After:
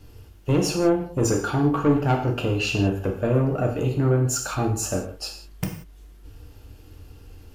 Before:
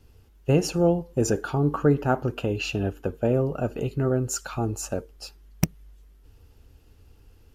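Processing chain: in parallel at +1 dB: compression, threshold -34 dBFS, peak gain reduction 18 dB; on the sum: saturation -16.5 dBFS, distortion -13 dB; gated-style reverb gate 210 ms falling, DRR 1.5 dB

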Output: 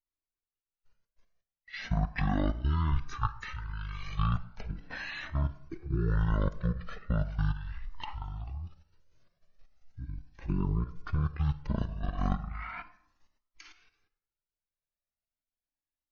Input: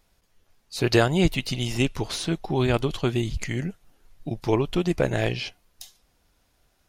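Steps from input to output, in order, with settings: gate -58 dBFS, range -27 dB; level held to a coarse grid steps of 12 dB; speed mistake 78 rpm record played at 33 rpm; on a send at -16 dB: reverberation RT60 0.80 s, pre-delay 38 ms; on the sum: Shepard-style flanger rising 0.37 Hz

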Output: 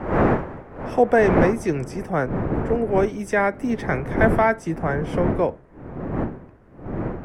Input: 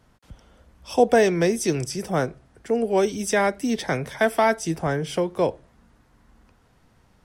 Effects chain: wind noise 570 Hz -26 dBFS, from 1.52 s 350 Hz; resonant high shelf 2.7 kHz -11 dB, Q 1.5

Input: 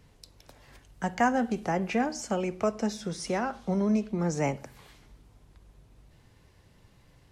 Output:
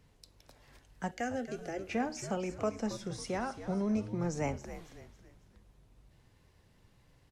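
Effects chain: 1.11–1.91 s: static phaser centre 410 Hz, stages 4; frequency-shifting echo 274 ms, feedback 41%, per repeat -87 Hz, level -11.5 dB; trim -6 dB

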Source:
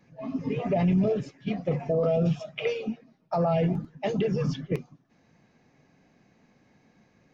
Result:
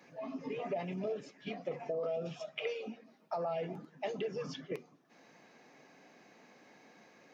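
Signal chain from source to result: high-pass 360 Hz 12 dB/octave; compression 2:1, threshold -53 dBFS, peak gain reduction 16 dB; reverberation, pre-delay 7 ms, DRR 23 dB; trim +6 dB

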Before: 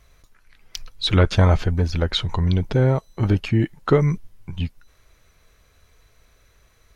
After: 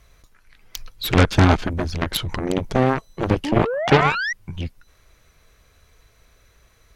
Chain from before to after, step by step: painted sound rise, 3.44–4.33 s, 270–2000 Hz -21 dBFS; Chebyshev shaper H 7 -10 dB, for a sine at -4 dBFS

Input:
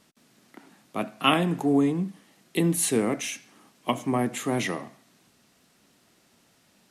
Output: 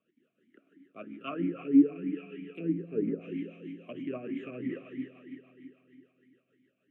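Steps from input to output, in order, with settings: rattle on loud lows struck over -28 dBFS, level -18 dBFS; bass shelf 390 Hz +10 dB; static phaser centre 2 kHz, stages 4; on a send: two-band feedback delay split 350 Hz, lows 223 ms, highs 150 ms, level -12.5 dB; on the sum: spring tank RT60 3.4 s, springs 47 ms, chirp 75 ms, DRR 5.5 dB; low-pass that closes with the level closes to 950 Hz, closed at -14 dBFS; rotary cabinet horn 6.7 Hz; talking filter a-i 3.1 Hz

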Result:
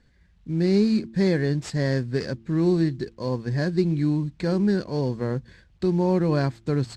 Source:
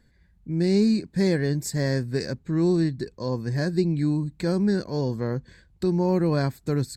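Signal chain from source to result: CVSD coder 64 kbps; low-pass 5.2 kHz 12 dB/octave; de-hum 113.1 Hz, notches 3; trim +1 dB

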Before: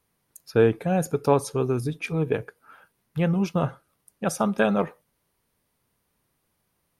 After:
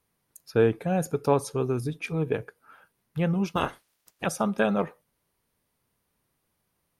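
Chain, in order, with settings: 3.55–4.25 s: spectral peaks clipped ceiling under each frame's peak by 25 dB; trim -2.5 dB

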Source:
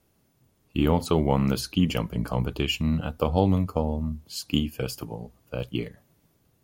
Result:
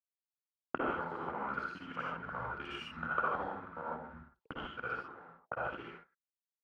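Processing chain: time reversed locally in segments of 53 ms; RIAA curve playback; level-controlled noise filter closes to 2.6 kHz, open at -9.5 dBFS; bass shelf 160 Hz -7.5 dB; compression 6:1, threshold -19 dBFS, peak gain reduction 9 dB; crossover distortion -39.5 dBFS; auto-wah 220–1400 Hz, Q 8.6, up, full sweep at -30.5 dBFS; reverberation, pre-delay 47 ms, DRR -5 dB; three bands expanded up and down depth 70%; trim +9 dB

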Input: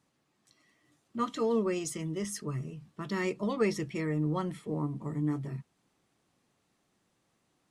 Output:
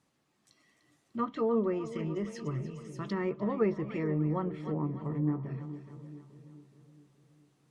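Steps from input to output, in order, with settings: two-band feedback delay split 570 Hz, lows 424 ms, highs 298 ms, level -12 dB; low-pass that closes with the level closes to 1.4 kHz, closed at -28.5 dBFS

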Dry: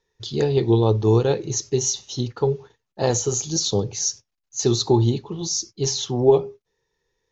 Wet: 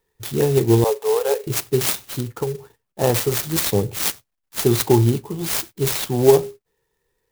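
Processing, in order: 0.84–1.47 s: Chebyshev high-pass 410 Hz, order 10; 2.04–2.55 s: compression 6:1, threshold -23 dBFS, peak gain reduction 8 dB; sampling jitter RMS 0.06 ms; trim +2.5 dB

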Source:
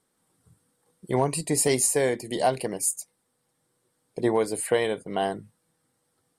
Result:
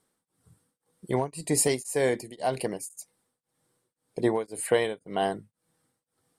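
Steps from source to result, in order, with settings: tremolo of two beating tones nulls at 1.9 Hz

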